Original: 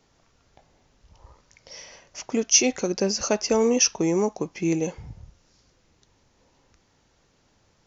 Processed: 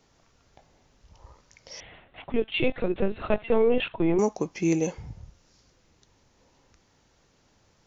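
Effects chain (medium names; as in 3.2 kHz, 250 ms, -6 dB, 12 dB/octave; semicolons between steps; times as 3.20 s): 1.80–4.19 s: LPC vocoder at 8 kHz pitch kept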